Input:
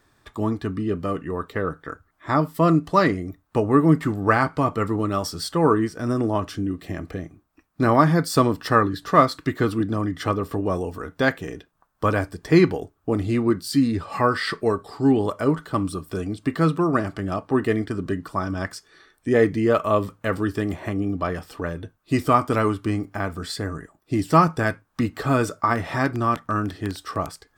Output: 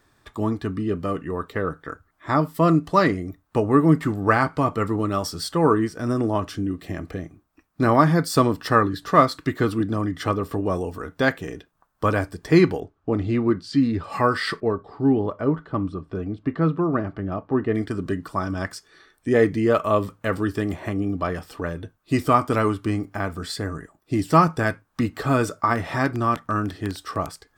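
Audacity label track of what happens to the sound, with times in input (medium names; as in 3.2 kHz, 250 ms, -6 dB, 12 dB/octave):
12.800000	14.040000	distance through air 130 m
14.600000	17.750000	tape spacing loss at 10 kHz 33 dB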